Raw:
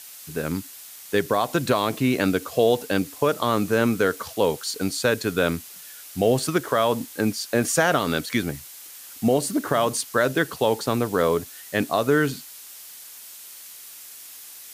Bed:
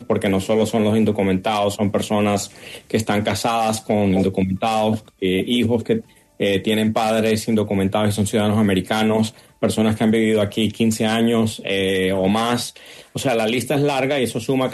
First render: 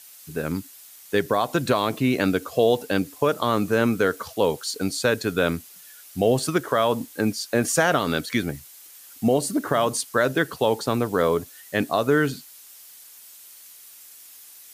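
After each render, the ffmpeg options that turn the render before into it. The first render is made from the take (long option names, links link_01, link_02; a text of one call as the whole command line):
ffmpeg -i in.wav -af "afftdn=noise_reduction=6:noise_floor=-43" out.wav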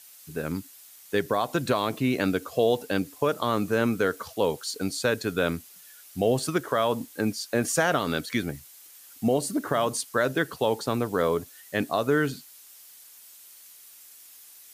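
ffmpeg -i in.wav -af "volume=-3.5dB" out.wav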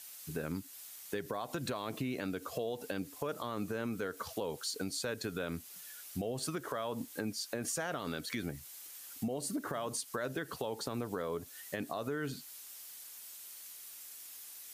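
ffmpeg -i in.wav -af "alimiter=limit=-19.5dB:level=0:latency=1:release=89,acompressor=threshold=-37dB:ratio=2.5" out.wav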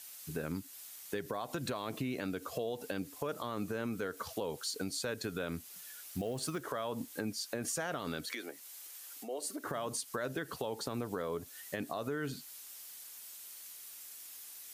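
ffmpeg -i in.wav -filter_complex "[0:a]asettb=1/sr,asplit=3[link_01][link_02][link_03];[link_01]atrim=end=5.754[link_04];[link_02]atrim=start=5.75:end=6.62,asetpts=PTS-STARTPTS,afade=type=in:duration=0.004:curve=qsin,afade=type=out:start_time=0.866:duration=0.004:curve=qsin,acrusher=bits=6:mode=log:mix=0:aa=0.000001[link_05];[link_03]atrim=start=6.616[link_06];[link_04][link_05]acrossfade=duration=0.004:curve1=hsin:curve2=qsin[link_07];[link_07][link_06]acrossfade=duration=0.004:curve1=qsin:curve2=hsin,asettb=1/sr,asplit=3[link_08][link_09][link_10];[link_08]atrim=end=8.324[link_11];[link_09]atrim=start=8.32:end=9.64,asetpts=PTS-STARTPTS,afade=type=in:duration=0.004:curve=qsin,afade=type=out:start_time=1.316:duration=0.004:curve=qsin,highpass=frequency=340:width=0.5412,highpass=frequency=340:width=1.3066[link_12];[link_10]atrim=start=9.636[link_13];[link_11][link_12]acrossfade=duration=0.004:curve1=hsin:curve2=qsin[link_14];[link_14][link_13]acrossfade=duration=0.004:curve1=qsin:curve2=hsin" out.wav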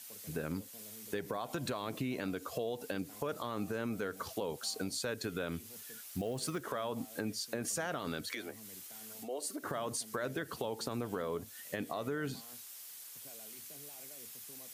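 ffmpeg -i in.wav -i bed.wav -filter_complex "[1:a]volume=-39.5dB[link_01];[0:a][link_01]amix=inputs=2:normalize=0" out.wav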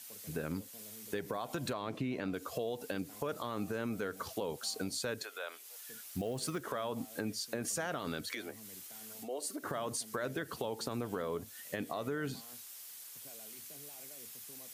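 ffmpeg -i in.wav -filter_complex "[0:a]asettb=1/sr,asplit=3[link_01][link_02][link_03];[link_01]atrim=end=1.734[link_04];[link_02]atrim=start=1.73:end=2.34,asetpts=PTS-STARTPTS,afade=type=in:duration=0.004:curve=qsin,afade=type=out:start_time=0.606:duration=0.004:curve=qsin,aemphasis=mode=reproduction:type=50fm[link_05];[link_03]atrim=start=2.336[link_06];[link_04][link_05]acrossfade=duration=0.004:curve1=hsin:curve2=qsin[link_07];[link_07][link_06]acrossfade=duration=0.004:curve1=qsin:curve2=hsin,asettb=1/sr,asplit=3[link_08][link_09][link_10];[link_08]atrim=end=5.234[link_11];[link_09]atrim=start=5.23:end=5.89,asetpts=PTS-STARTPTS,afade=type=in:duration=0.004:curve=qsin,afade=type=out:start_time=0.656:duration=0.004:curve=qsin,highpass=frequency=570:width=0.5412,highpass=frequency=570:width=1.3066[link_12];[link_10]atrim=start=5.886[link_13];[link_11][link_12]acrossfade=duration=0.004:curve1=hsin:curve2=qsin[link_14];[link_14][link_13]acrossfade=duration=0.004:curve1=qsin:curve2=hsin" out.wav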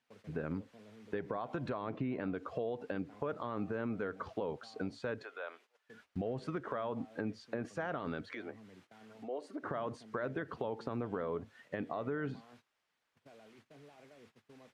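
ffmpeg -i in.wav -af "lowpass=1900,agate=range=-16dB:threshold=-60dB:ratio=16:detection=peak" out.wav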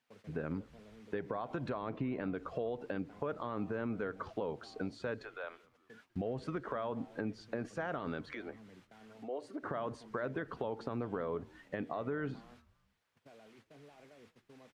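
ffmpeg -i in.wav -filter_complex "[0:a]asplit=4[link_01][link_02][link_03][link_04];[link_02]adelay=198,afreqshift=-110,volume=-24dB[link_05];[link_03]adelay=396,afreqshift=-220,volume=-30.9dB[link_06];[link_04]adelay=594,afreqshift=-330,volume=-37.9dB[link_07];[link_01][link_05][link_06][link_07]amix=inputs=4:normalize=0" out.wav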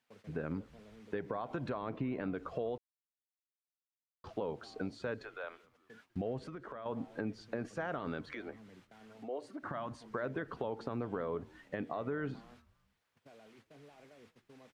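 ffmpeg -i in.wav -filter_complex "[0:a]asettb=1/sr,asplit=3[link_01][link_02][link_03];[link_01]atrim=end=6.384[link_04];[link_02]atrim=start=6.38:end=6.86,asetpts=PTS-STARTPTS,afade=type=in:duration=0.004:curve=qsin,afade=type=out:start_time=0.476:duration=0.004:curve=qsin,acompressor=threshold=-47dB:ratio=2:attack=3.2:release=140:knee=1:detection=peak[link_05];[link_03]atrim=start=6.856[link_06];[link_04][link_05]acrossfade=duration=0.004:curve1=hsin:curve2=qsin[link_07];[link_07][link_06]acrossfade=duration=0.004:curve1=qsin:curve2=hsin,asettb=1/sr,asplit=3[link_08][link_09][link_10];[link_08]atrim=end=9.504[link_11];[link_09]atrim=start=9.5:end=10.02,asetpts=PTS-STARTPTS,afade=type=in:duration=0.004:curve=qsin,afade=type=out:start_time=0.516:duration=0.004:curve=qsin,equalizer=frequency=440:width_type=o:width=0.45:gain=-14[link_12];[link_10]atrim=start=10.016[link_13];[link_11][link_12]acrossfade=duration=0.004:curve1=hsin:curve2=qsin[link_14];[link_14][link_13]acrossfade=duration=0.004:curve1=qsin:curve2=hsin,asplit=3[link_15][link_16][link_17];[link_15]atrim=end=2.78,asetpts=PTS-STARTPTS,afade=type=out:start_time=2.776:duration=0.004:curve=hsin[link_18];[link_16]atrim=start=2.78:end=4.24,asetpts=PTS-STARTPTS,volume=0[link_19];[link_17]atrim=start=4.24,asetpts=PTS-STARTPTS,afade=type=in:duration=0.004:curve=hsin[link_20];[link_18][link_19][link_20]concat=n=3:v=0:a=1" out.wav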